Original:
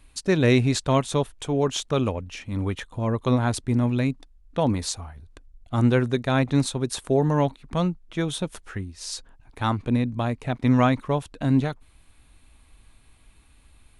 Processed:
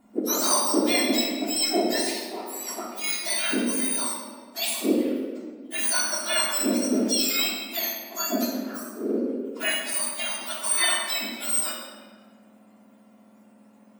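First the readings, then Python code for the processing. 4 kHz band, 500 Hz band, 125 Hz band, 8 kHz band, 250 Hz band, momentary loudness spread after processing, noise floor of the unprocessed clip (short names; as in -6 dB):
+7.5 dB, -4.0 dB, under -25 dB, +11.0 dB, -3.5 dB, 11 LU, -56 dBFS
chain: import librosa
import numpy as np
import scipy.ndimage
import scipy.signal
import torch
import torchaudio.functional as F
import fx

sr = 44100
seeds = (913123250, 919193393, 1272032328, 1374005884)

y = fx.octave_mirror(x, sr, pivot_hz=1500.0)
y = fx.room_shoebox(y, sr, seeds[0], volume_m3=1900.0, walls='mixed', distance_m=3.2)
y = F.gain(torch.from_numpy(y), -2.0).numpy()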